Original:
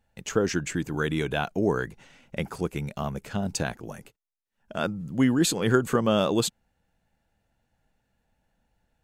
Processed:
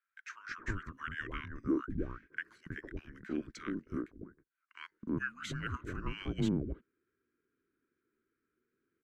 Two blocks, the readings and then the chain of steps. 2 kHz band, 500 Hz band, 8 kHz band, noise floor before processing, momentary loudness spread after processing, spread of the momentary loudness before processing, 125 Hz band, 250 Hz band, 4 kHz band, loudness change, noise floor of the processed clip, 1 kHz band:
−8.0 dB, −17.5 dB, −23.5 dB, −77 dBFS, 14 LU, 12 LU, −11.0 dB, −10.5 dB, −16.0 dB, −12.5 dB, below −85 dBFS, −14.0 dB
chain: pair of resonant band-passes 1,200 Hz, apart 1.4 octaves
frequency shifter −410 Hz
multiband delay without the direct sound highs, lows 320 ms, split 1,100 Hz
level +3.5 dB

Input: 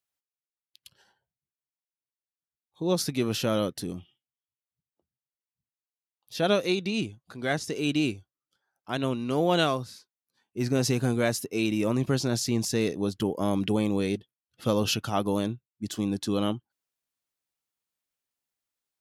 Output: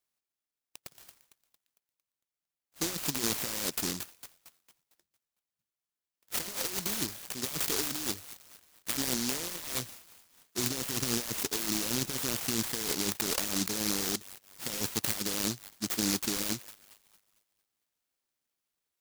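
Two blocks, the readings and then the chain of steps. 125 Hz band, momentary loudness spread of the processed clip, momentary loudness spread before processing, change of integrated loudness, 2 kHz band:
−11.5 dB, 13 LU, 10 LU, −3.5 dB, −4.0 dB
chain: adaptive Wiener filter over 9 samples
high-pass filter 1,300 Hz 6 dB per octave
wrap-around overflow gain 15 dB
compressor whose output falls as the input rises −42 dBFS, ratio −1
on a send: delay with a high-pass on its return 227 ms, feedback 42%, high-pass 3,900 Hz, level −5 dB
on the sum: short delay modulated by noise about 5,300 Hz, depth 0.46 ms
level +8.5 dB

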